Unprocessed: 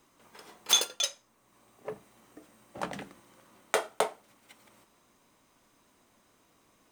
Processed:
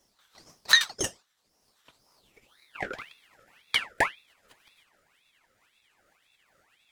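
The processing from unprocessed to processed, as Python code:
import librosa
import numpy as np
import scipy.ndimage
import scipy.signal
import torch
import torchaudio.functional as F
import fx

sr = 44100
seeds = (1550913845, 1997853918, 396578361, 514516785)

y = fx.pitch_ramps(x, sr, semitones=-6.5, every_ms=497)
y = fx.filter_sweep_highpass(y, sr, from_hz=2500.0, to_hz=390.0, start_s=2.02, end_s=3.01, q=4.0)
y = fx.ring_lfo(y, sr, carrier_hz=2000.0, swing_pct=55, hz=1.9)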